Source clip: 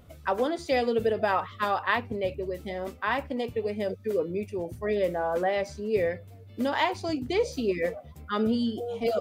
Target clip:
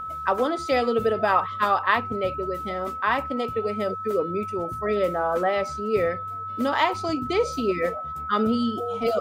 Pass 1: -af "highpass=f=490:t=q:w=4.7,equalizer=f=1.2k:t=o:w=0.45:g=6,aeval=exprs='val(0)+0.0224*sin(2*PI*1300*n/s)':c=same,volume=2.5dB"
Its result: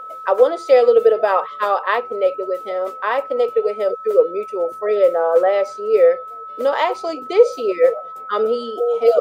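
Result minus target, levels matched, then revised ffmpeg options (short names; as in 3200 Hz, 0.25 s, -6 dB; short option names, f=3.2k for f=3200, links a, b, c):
500 Hz band +3.5 dB
-af "equalizer=f=1.2k:t=o:w=0.45:g=6,aeval=exprs='val(0)+0.0224*sin(2*PI*1300*n/s)':c=same,volume=2.5dB"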